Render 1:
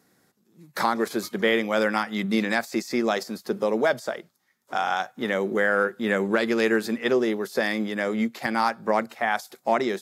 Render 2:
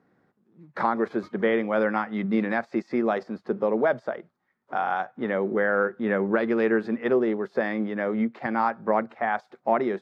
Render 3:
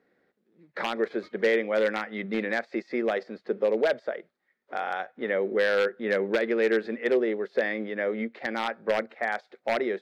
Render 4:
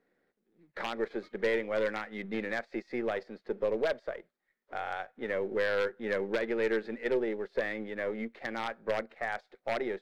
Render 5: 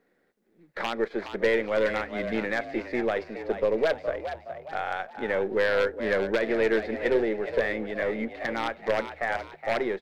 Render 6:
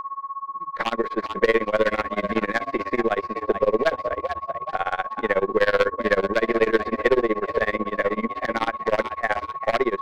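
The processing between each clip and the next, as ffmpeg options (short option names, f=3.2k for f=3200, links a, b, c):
-af "lowpass=1.6k"
-af "aeval=exprs='0.188*(abs(mod(val(0)/0.188+3,4)-2)-1)':c=same,equalizer=f=125:t=o:w=1:g=-9,equalizer=f=500:t=o:w=1:g=9,equalizer=f=1k:t=o:w=1:g=-6,equalizer=f=2k:t=o:w=1:g=9,equalizer=f=4k:t=o:w=1:g=8,volume=-6.5dB"
-af "aeval=exprs='if(lt(val(0),0),0.708*val(0),val(0))':c=same,volume=-4.5dB"
-filter_complex "[0:a]asplit=5[a][b][c][d][e];[b]adelay=418,afreqshift=76,volume=-10dB[f];[c]adelay=836,afreqshift=152,volume=-17.7dB[g];[d]adelay=1254,afreqshift=228,volume=-25.5dB[h];[e]adelay=1672,afreqshift=304,volume=-33.2dB[i];[a][f][g][h][i]amix=inputs=5:normalize=0,volume=5.5dB"
-af "aeval=exprs='val(0)+0.0224*sin(2*PI*1100*n/s)':c=same,tremolo=f=16:d=0.96,volume=8dB"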